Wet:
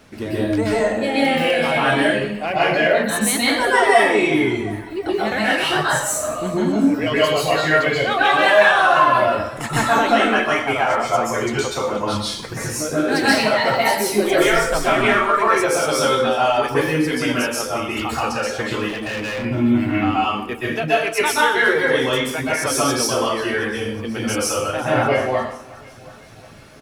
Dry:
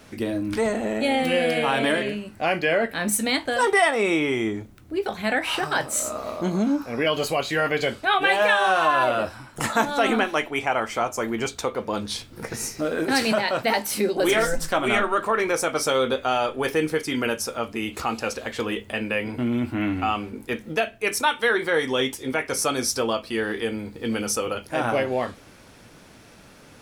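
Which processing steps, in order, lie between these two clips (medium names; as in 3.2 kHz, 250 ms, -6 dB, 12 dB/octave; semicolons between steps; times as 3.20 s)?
feedback delay 363 ms, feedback 52%, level -15 dB; reverb removal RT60 1.8 s; in parallel at -7 dB: saturation -23.5 dBFS, distortion -9 dB; on the sum: plate-style reverb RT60 0.7 s, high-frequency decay 0.9×, pre-delay 115 ms, DRR -8 dB; 18.88–19.45 s: overload inside the chain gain 20 dB; peaking EQ 14 kHz -4 dB 1.7 oct; trim -3 dB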